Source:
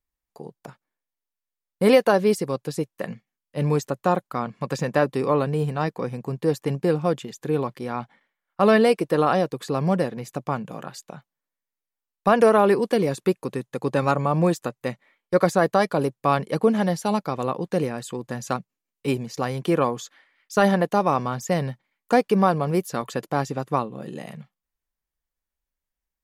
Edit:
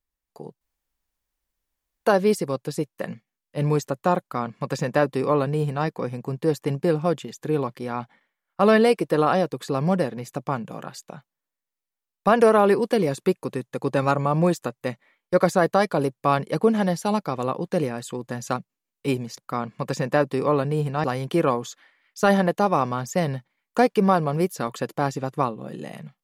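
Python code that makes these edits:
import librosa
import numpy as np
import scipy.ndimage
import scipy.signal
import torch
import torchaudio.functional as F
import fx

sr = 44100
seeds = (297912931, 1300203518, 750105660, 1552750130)

y = fx.edit(x, sr, fx.room_tone_fill(start_s=0.61, length_s=1.45),
    fx.duplicate(start_s=4.2, length_s=1.66, to_s=19.38), tone=tone)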